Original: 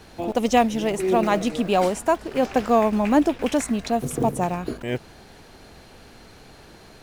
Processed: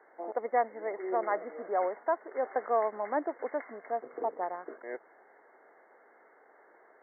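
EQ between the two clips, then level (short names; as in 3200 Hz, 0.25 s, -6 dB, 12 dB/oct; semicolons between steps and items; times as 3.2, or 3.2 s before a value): HPF 410 Hz 24 dB/oct; brick-wall FIR low-pass 2200 Hz; -8.5 dB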